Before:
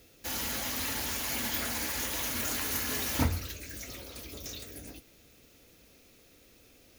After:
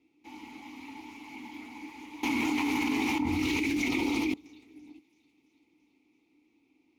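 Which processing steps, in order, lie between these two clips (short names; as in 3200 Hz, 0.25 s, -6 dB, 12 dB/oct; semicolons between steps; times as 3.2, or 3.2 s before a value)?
vowel filter u; thin delay 0.335 s, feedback 63%, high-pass 2800 Hz, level -9.5 dB; 2.23–4.34 fast leveller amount 100%; gain +4 dB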